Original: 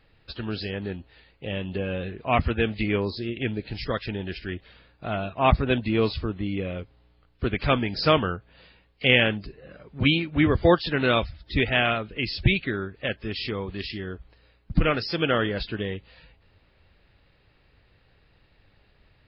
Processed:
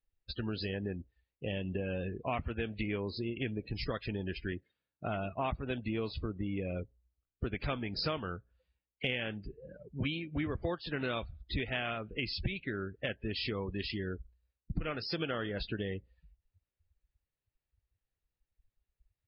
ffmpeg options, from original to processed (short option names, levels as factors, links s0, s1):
-filter_complex "[0:a]asettb=1/sr,asplit=3[s0][s1][s2];[s0]atrim=end=4.524[s3];[s1]atrim=start=4.52:end=5.07,asetpts=PTS-STARTPTS,afade=t=in:d=0.004:c=qsin,afade=t=out:st=0.546:d=0.004:c=qsin,highpass=93[s4];[s2]atrim=start=5.066[s5];[s3][s4]acrossfade=d=0.004:c1=hsin:c2=qsin[s6];[s6][s5]acrossfade=d=0.004:c1=qsin:c2=hsin,afftdn=nr=32:nf=-39,acompressor=threshold=0.0282:ratio=6,volume=0.841"